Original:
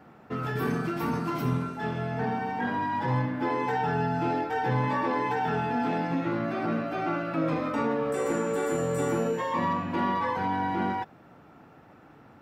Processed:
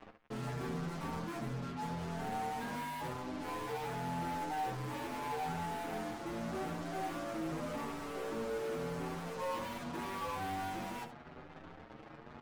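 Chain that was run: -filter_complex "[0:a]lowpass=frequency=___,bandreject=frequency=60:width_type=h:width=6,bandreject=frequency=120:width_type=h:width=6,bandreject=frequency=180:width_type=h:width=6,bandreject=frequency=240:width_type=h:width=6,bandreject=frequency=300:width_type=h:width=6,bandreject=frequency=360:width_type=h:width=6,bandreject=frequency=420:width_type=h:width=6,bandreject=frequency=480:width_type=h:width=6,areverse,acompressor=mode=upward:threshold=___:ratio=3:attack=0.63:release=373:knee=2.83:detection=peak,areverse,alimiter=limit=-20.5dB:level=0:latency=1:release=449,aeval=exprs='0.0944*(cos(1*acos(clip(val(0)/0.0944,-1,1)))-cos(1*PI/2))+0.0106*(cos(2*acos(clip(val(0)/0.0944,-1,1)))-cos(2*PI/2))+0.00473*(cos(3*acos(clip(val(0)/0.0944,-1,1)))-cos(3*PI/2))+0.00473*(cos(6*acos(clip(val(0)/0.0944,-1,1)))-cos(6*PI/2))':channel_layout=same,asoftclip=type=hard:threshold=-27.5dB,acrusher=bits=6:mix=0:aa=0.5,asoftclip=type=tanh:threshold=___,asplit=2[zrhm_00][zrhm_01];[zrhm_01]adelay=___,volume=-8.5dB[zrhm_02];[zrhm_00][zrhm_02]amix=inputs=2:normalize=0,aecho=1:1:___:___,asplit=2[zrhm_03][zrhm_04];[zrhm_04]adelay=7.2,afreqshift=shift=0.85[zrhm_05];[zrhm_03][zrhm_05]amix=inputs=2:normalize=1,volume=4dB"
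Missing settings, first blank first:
1100, -36dB, -39.5dB, 13, 72, 0.251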